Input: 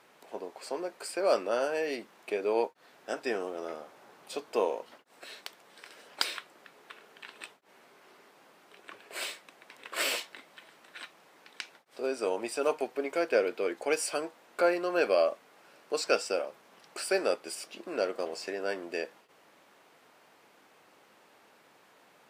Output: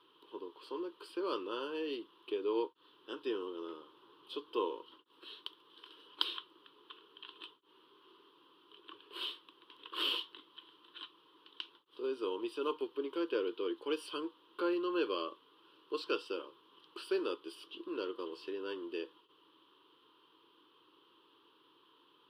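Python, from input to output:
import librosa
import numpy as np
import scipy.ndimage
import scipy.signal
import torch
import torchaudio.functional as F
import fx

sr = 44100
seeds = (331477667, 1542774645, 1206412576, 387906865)

y = fx.curve_eq(x, sr, hz=(130.0, 220.0, 320.0, 470.0, 700.0, 1000.0, 2200.0, 3100.0, 7100.0, 10000.0), db=(0, -7, 11, 2, -22, 9, -13, 15, -23, -8))
y = y * librosa.db_to_amplitude(-9.0)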